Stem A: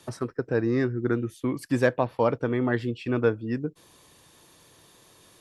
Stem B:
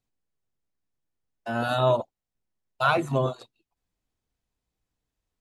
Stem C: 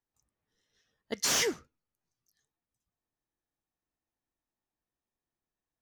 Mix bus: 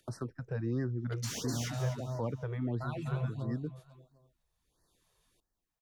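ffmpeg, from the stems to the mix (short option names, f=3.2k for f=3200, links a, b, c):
-filter_complex "[0:a]agate=range=-53dB:threshold=-45dB:ratio=16:detection=peak,acompressor=mode=upward:threshold=-43dB:ratio=2.5,volume=-2.5dB[a];[1:a]lowshelf=f=200:g=11.5,volume=-7dB,asplit=3[b][c][d];[c]volume=-9.5dB[e];[2:a]volume=1dB,asplit=2[f][g];[g]volume=-4dB[h];[d]apad=whole_len=238187[i];[a][i]sidechaincompress=threshold=-29dB:ratio=8:attack=16:release=432[j];[b][f]amix=inputs=2:normalize=0,acompressor=threshold=-27dB:ratio=6,volume=0dB[k];[e][h]amix=inputs=2:normalize=0,aecho=0:1:250|500|750|1000:1|0.31|0.0961|0.0298[l];[j][k][l]amix=inputs=3:normalize=0,acrossover=split=190[m][n];[n]acompressor=threshold=-46dB:ratio=2[o];[m][o]amix=inputs=2:normalize=0,afftfilt=real='re*(1-between(b*sr/1024,240*pow(2900/240,0.5+0.5*sin(2*PI*1.5*pts/sr))/1.41,240*pow(2900/240,0.5+0.5*sin(2*PI*1.5*pts/sr))*1.41))':imag='im*(1-between(b*sr/1024,240*pow(2900/240,0.5+0.5*sin(2*PI*1.5*pts/sr))/1.41,240*pow(2900/240,0.5+0.5*sin(2*PI*1.5*pts/sr))*1.41))':win_size=1024:overlap=0.75"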